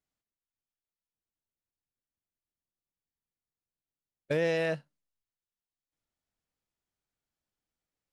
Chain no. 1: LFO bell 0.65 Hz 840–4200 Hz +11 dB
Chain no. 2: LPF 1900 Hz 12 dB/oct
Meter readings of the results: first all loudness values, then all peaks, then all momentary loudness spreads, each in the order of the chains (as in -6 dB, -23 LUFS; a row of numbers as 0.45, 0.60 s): -29.0, -31.5 LUFS; -14.5, -19.0 dBFS; 7, 7 LU